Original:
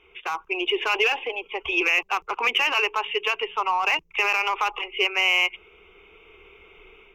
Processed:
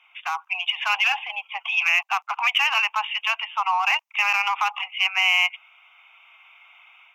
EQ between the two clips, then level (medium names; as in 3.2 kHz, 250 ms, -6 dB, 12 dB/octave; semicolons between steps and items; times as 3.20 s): steep high-pass 690 Hz 72 dB/octave; +1.5 dB